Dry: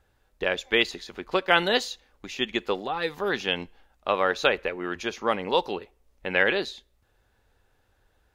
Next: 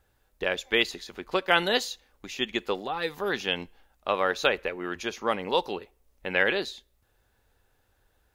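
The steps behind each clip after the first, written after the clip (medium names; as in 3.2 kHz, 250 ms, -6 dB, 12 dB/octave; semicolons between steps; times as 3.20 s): treble shelf 9.5 kHz +10 dB; trim -2 dB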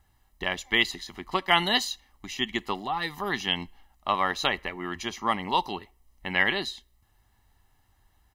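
comb 1 ms, depth 77%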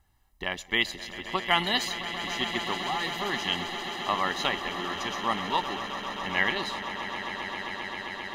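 echo with a slow build-up 132 ms, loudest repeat 8, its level -14 dB; trim -2.5 dB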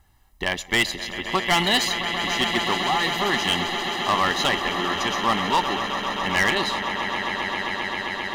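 overload inside the chain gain 22.5 dB; trim +8 dB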